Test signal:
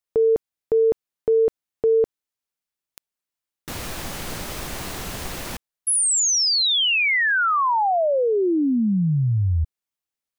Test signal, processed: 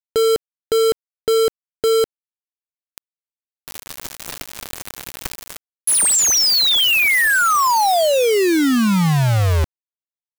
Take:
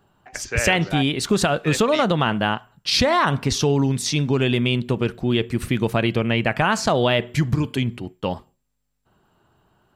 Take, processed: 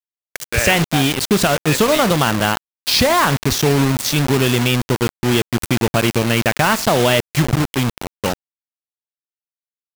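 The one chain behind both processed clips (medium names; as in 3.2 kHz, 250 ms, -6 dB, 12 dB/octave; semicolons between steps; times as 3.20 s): bit crusher 4-bit; trim +3.5 dB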